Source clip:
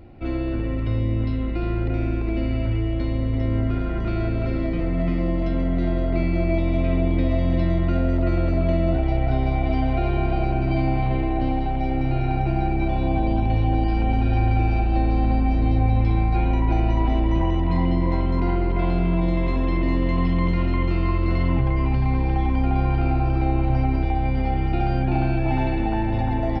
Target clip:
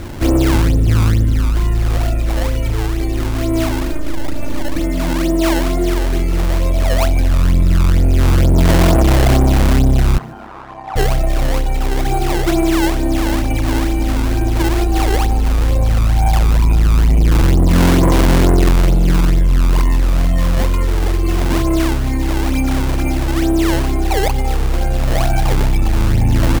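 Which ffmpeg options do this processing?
ffmpeg -i in.wav -filter_complex "[0:a]asettb=1/sr,asplit=3[link_01][link_02][link_03];[link_01]atrim=end=3.914[link_04];[link_02]atrim=start=3.91:end=4.76,asetpts=PTS-STARTPTS,afade=type=in:duration=0.004:curve=qsin,afade=type=out:start_time=0.846:duration=0.004:curve=qsin,aeval=exprs='max(val(0),0)':channel_layout=same[link_05];[link_03]atrim=start=4.756[link_06];[link_04][link_05]acrossfade=duration=0.004:curve1=hsin:curve2=qsin[link_07];[link_07][link_06]acrossfade=duration=0.004:curve1=qsin:curve2=hsin,aphaser=in_gain=1:out_gain=1:delay=3.4:decay=0.76:speed=0.11:type=sinusoidal,acrusher=samples=21:mix=1:aa=0.000001:lfo=1:lforange=33.6:lforate=2.2,asoftclip=type=tanh:threshold=-12.5dB,asettb=1/sr,asplit=3[link_08][link_09][link_10];[link_08]atrim=end=10.184[link_11];[link_09]atrim=start=10.18:end=10.96,asetpts=PTS-STARTPTS,afade=type=in:duration=0.004:curve=qsin,afade=type=out:start_time=0.776:duration=0.004:curve=qsin,bandpass=frequency=1000:width_type=q:width=2.1:csg=0[link_12];[link_10]atrim=start=10.956[link_13];[link_11][link_12]acrossfade=duration=0.004:curve1=hsin:curve2=qsin[link_14];[link_14][link_13]acrossfade=duration=0.004:curve1=qsin:curve2=hsin,asplit=4[link_15][link_16][link_17][link_18];[link_16]adelay=146,afreqshift=92,volume=-23.5dB[link_19];[link_17]adelay=292,afreqshift=184,volume=-30.4dB[link_20];[link_18]adelay=438,afreqshift=276,volume=-37.4dB[link_21];[link_15][link_19][link_20][link_21]amix=inputs=4:normalize=0,volume=5dB" out.wav

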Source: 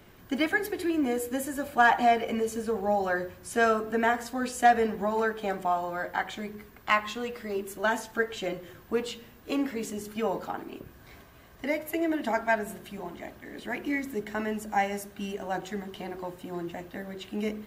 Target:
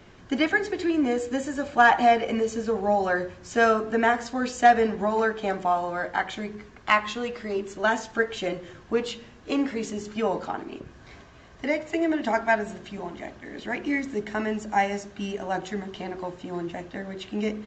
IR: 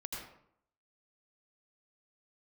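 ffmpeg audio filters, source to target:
-af "aresample=16000,aresample=44100,volume=3.5dB"

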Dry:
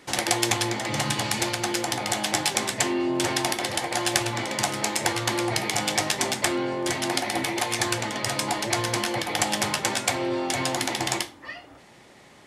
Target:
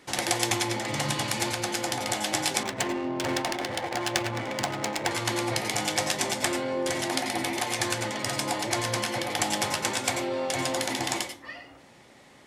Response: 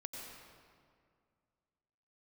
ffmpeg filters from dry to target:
-filter_complex "[1:a]atrim=start_sample=2205,afade=type=out:start_time=0.16:duration=0.01,atrim=end_sample=7497[link_01];[0:a][link_01]afir=irnorm=-1:irlink=0,asettb=1/sr,asplit=3[link_02][link_03][link_04];[link_02]atrim=end=2.634[link_05];[link_03]atrim=start=2.63:end=5.11,asetpts=PTS-STARTPTS,afade=type=in:duration=0.004:curve=qsin,afade=type=out:start_time=2.476:duration=0.004:curve=qsin,adynamicsmooth=sensitivity=6:basefreq=1000[link_06];[link_04]atrim=start=5.106[link_07];[link_05][link_06]acrossfade=duration=0.004:curve1=hsin:curve2=qsin[link_08];[link_08][link_07]acrossfade=duration=0.004:curve1=qsin:curve2=hsin,volume=2dB"

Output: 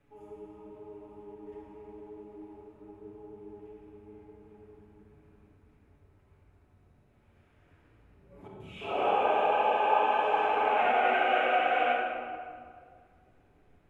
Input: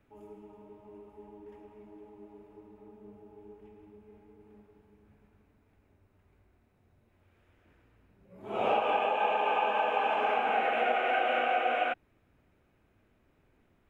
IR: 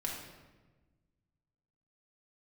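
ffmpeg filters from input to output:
-filter_complex "[0:a]asettb=1/sr,asplit=3[link_01][link_02][link_03];[link_01]atrim=end=8.474[link_04];[link_02]atrim=start=8.47:end=10.78,asetpts=PTS-STARTPTS,afade=type=in:duration=0.004:curve=qsin,afade=type=out:start_time=2.306:duration=0.004:curve=qsin,acrossover=split=190|2400[link_05][link_06][link_07];[link_07]adelay=130[link_08];[link_06]adelay=340[link_09];[link_05][link_09][link_08]amix=inputs=3:normalize=0,atrim=end_sample=101871[link_10];[link_03]atrim=start=10.776[link_11];[link_04][link_10]acrossfade=duration=0.004:curve1=hsin:curve2=qsin[link_12];[link_12][link_11]acrossfade=duration=0.004:curve1=qsin:curve2=hsin[link_13];[1:a]atrim=start_sample=2205,asetrate=23814,aresample=44100[link_14];[link_13][link_14]afir=irnorm=-1:irlink=0,volume=-4dB"

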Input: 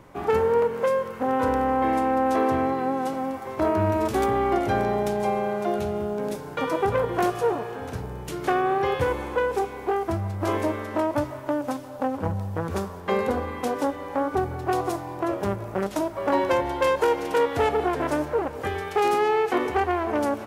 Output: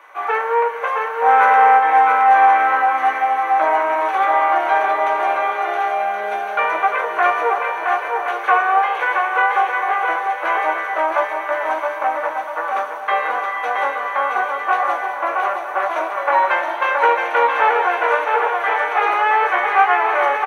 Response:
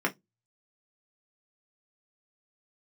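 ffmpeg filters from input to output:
-filter_complex "[0:a]acrossover=split=3600[link_01][link_02];[link_02]acompressor=threshold=-54dB:ratio=4:attack=1:release=60[link_03];[link_01][link_03]amix=inputs=2:normalize=0,highpass=frequency=730:width=0.5412,highpass=frequency=730:width=1.3066,asettb=1/sr,asplit=3[link_04][link_05][link_06];[link_04]atrim=end=1.264[link_07];[link_05]atrim=start=1.26:end=1.78,asetpts=PTS-STARTPTS,afade=type=in:duration=0.004:curve=qsin,afade=type=out:start_time=0.516:duration=0.004:curve=qsin,acontrast=31[link_08];[link_06]atrim=start=1.776[link_09];[link_07][link_08]acrossfade=duration=0.004:curve1=hsin:curve2=qsin[link_10];[link_10][link_09]acrossfade=duration=0.004:curve1=qsin:curve2=hsin,aecho=1:1:670|1072|1313|1458|1545:0.631|0.398|0.251|0.158|0.1[link_11];[1:a]atrim=start_sample=2205,asetrate=48510,aresample=44100[link_12];[link_11][link_12]afir=irnorm=-1:irlink=0,volume=2dB"

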